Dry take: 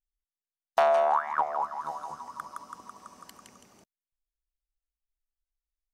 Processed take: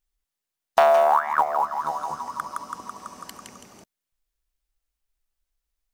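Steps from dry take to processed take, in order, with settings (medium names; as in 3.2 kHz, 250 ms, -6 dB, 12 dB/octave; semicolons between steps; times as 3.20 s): in parallel at -2.5 dB: compression 6:1, threshold -34 dBFS, peak gain reduction 14 dB; on the sum: short-mantissa float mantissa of 4-bit; trim +4.5 dB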